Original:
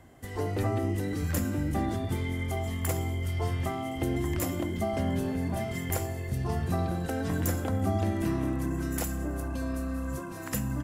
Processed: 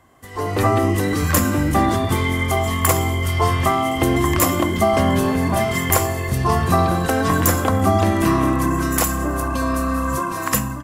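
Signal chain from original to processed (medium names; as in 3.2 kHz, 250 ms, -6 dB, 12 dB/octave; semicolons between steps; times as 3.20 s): bass shelf 430 Hz -6.5 dB; level rider gain up to 14 dB; peaking EQ 1.1 kHz +12.5 dB 0.21 oct; trim +2 dB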